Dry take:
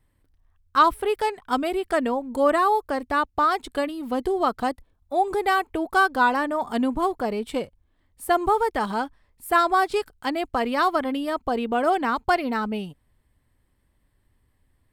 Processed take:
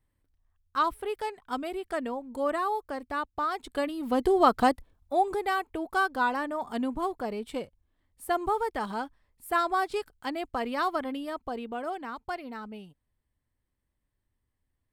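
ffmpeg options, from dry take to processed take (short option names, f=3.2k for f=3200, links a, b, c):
-af "volume=3dB,afade=t=in:st=3.53:d=1.09:silence=0.251189,afade=t=out:st=4.62:d=0.81:silence=0.316228,afade=t=out:st=11.01:d=0.97:silence=0.446684"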